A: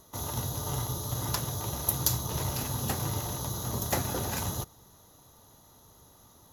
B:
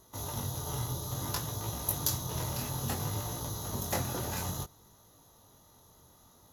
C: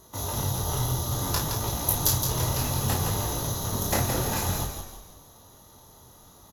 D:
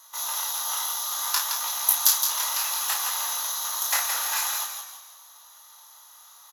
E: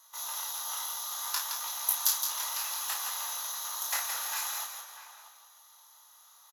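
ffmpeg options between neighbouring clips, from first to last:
-af "flanger=delay=18:depth=6.4:speed=0.59"
-filter_complex "[0:a]asplit=2[s0][s1];[s1]adelay=32,volume=0.501[s2];[s0][s2]amix=inputs=2:normalize=0,asplit=2[s3][s4];[s4]asplit=5[s5][s6][s7][s8][s9];[s5]adelay=167,afreqshift=-44,volume=0.473[s10];[s6]adelay=334,afreqshift=-88,volume=0.195[s11];[s7]adelay=501,afreqshift=-132,volume=0.0794[s12];[s8]adelay=668,afreqshift=-176,volume=0.0327[s13];[s9]adelay=835,afreqshift=-220,volume=0.0133[s14];[s10][s11][s12][s13][s14]amix=inputs=5:normalize=0[s15];[s3][s15]amix=inputs=2:normalize=0,volume=2"
-af "highpass=f=1000:w=0.5412,highpass=f=1000:w=1.3066,volume=1.78"
-filter_complex "[0:a]asplit=2[s0][s1];[s1]adelay=641.4,volume=0.282,highshelf=f=4000:g=-14.4[s2];[s0][s2]amix=inputs=2:normalize=0,volume=0.422"

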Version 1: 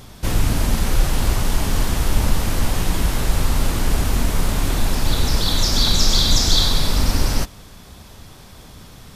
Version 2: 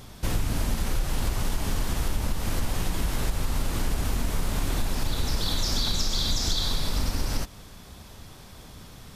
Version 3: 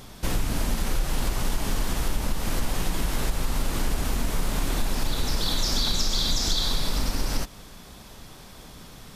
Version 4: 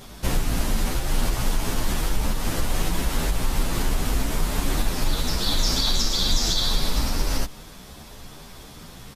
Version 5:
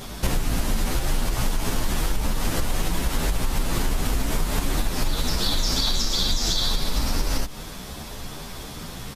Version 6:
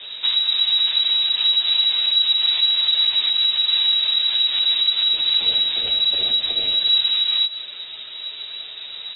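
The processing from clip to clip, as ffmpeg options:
-af "acompressor=threshold=0.141:ratio=6,volume=0.631"
-af "equalizer=f=84:w=1.6:g=-8,volume=1.26"
-filter_complex "[0:a]asplit=2[s0][s1];[s1]adelay=10.3,afreqshift=2.5[s2];[s0][s2]amix=inputs=2:normalize=1,volume=1.88"
-af "acompressor=threshold=0.0562:ratio=6,volume=2.11"
-af "flanger=delay=4.5:depth=4.2:regen=64:speed=1.3:shape=sinusoidal,lowpass=f=3300:t=q:w=0.5098,lowpass=f=3300:t=q:w=0.6013,lowpass=f=3300:t=q:w=0.9,lowpass=f=3300:t=q:w=2.563,afreqshift=-3900,crystalizer=i=3:c=0"

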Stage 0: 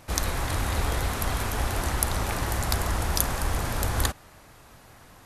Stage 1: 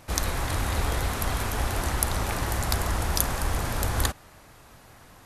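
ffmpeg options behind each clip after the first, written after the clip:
-af anull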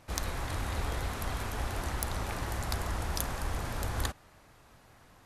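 -af "highshelf=f=8200:g=-6,aeval=exprs='0.596*(cos(1*acos(clip(val(0)/0.596,-1,1)))-cos(1*PI/2))+0.266*(cos(2*acos(clip(val(0)/0.596,-1,1)))-cos(2*PI/2))+0.0668*(cos(4*acos(clip(val(0)/0.596,-1,1)))-cos(4*PI/2))':c=same,volume=0.447"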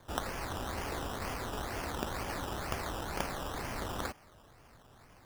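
-filter_complex "[0:a]acrossover=split=180|500|5200[s0][s1][s2][s3];[s0]acompressor=threshold=0.00794:ratio=6[s4];[s4][s1][s2][s3]amix=inputs=4:normalize=0,acrusher=samples=16:mix=1:aa=0.000001:lfo=1:lforange=9.6:lforate=2.1"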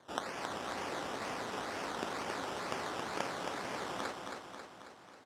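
-af "highpass=220,lowpass=7600,aecho=1:1:271|542|813|1084|1355|1626|1897|2168:0.562|0.326|0.189|0.11|0.0636|0.0369|0.0214|0.0124,volume=0.841"

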